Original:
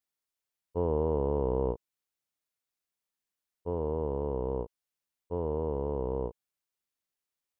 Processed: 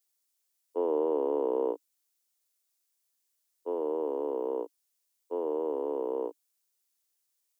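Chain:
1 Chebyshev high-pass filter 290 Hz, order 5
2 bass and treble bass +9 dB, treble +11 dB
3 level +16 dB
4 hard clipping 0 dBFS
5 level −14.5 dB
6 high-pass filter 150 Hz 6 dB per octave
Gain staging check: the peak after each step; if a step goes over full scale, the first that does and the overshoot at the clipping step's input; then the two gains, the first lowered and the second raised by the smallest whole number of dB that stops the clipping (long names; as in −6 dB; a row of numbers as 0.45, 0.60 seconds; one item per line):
−20.5, −19.5, −3.5, −3.5, −18.0, −18.5 dBFS
no step passes full scale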